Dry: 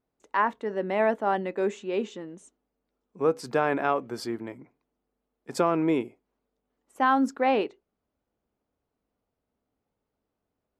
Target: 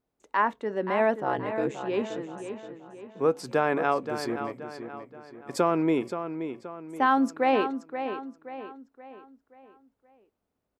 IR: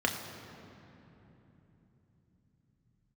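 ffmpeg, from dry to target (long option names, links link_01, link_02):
-filter_complex "[0:a]asettb=1/sr,asplit=3[link_01][link_02][link_03];[link_01]atrim=end=1.204[link_04];[link_02]atrim=start=1.2:end=1.81,asetpts=PTS-STARTPTS,afade=type=in:duration=0.004:curve=qsin,afade=type=out:start_time=0.606:duration=0.004:curve=qsin,aeval=exprs='val(0)*sin(2*PI*68*n/s)':channel_layout=same[link_05];[link_03]atrim=start=1.806[link_06];[link_04][link_05]acrossfade=duration=0.004:curve1=hsin:curve2=qsin[link_07];[link_07][link_06]acrossfade=duration=0.004:curve1=qsin:curve2=hsin,asplit=2[link_08][link_09];[link_09]adelay=526,lowpass=frequency=4500:poles=1,volume=-9dB,asplit=2[link_10][link_11];[link_11]adelay=526,lowpass=frequency=4500:poles=1,volume=0.44,asplit=2[link_12][link_13];[link_13]adelay=526,lowpass=frequency=4500:poles=1,volume=0.44,asplit=2[link_14][link_15];[link_15]adelay=526,lowpass=frequency=4500:poles=1,volume=0.44,asplit=2[link_16][link_17];[link_17]adelay=526,lowpass=frequency=4500:poles=1,volume=0.44[link_18];[link_08][link_10][link_12][link_14][link_16][link_18]amix=inputs=6:normalize=0"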